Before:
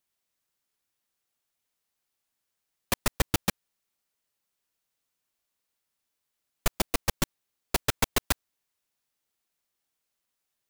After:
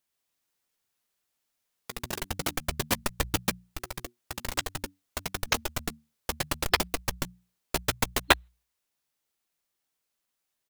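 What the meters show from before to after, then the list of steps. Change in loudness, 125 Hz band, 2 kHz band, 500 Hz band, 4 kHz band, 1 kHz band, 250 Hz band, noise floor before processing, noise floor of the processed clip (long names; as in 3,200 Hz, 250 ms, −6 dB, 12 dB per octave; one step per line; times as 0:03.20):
−1.0 dB, 0.0 dB, +5.0 dB, +2.5 dB, +4.0 dB, +4.0 dB, +0.5 dB, −83 dBFS, −82 dBFS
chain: mains-hum notches 60/120/180 Hz
gain on a spectral selection 0:08.24–0:08.48, 280–4,200 Hz +12 dB
delay with pitch and tempo change per echo 145 ms, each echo +4 semitones, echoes 3
double-tracking delay 13 ms −14 dB
saturating transformer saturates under 360 Hz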